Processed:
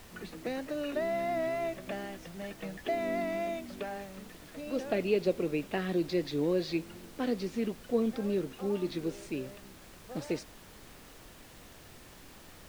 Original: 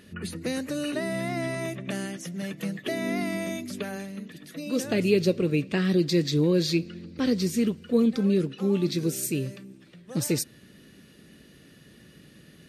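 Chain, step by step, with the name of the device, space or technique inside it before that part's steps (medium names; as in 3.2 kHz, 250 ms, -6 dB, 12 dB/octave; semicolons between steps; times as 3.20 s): horn gramophone (band-pass 240–3300 Hz; peaking EQ 720 Hz +9.5 dB 0.58 oct; wow and flutter; pink noise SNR 18 dB); trim -6 dB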